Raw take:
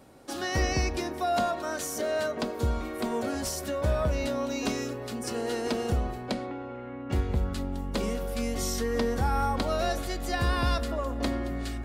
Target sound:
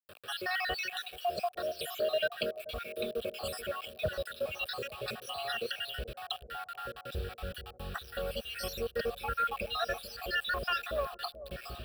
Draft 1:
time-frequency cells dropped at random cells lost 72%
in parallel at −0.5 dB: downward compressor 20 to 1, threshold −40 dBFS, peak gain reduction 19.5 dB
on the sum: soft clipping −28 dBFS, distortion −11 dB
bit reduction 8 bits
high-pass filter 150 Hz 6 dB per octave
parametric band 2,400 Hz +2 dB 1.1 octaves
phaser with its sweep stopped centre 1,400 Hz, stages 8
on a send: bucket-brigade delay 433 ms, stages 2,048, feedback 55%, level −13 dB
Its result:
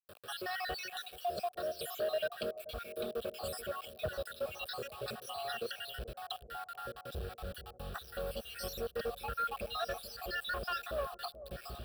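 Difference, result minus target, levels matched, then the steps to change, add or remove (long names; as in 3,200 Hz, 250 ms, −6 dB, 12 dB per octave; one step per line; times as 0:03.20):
soft clipping: distortion +9 dB; 2,000 Hz band −2.0 dB
change: soft clipping −20 dBFS, distortion −20 dB
change: parametric band 2,400 Hz +10.5 dB 1.1 octaves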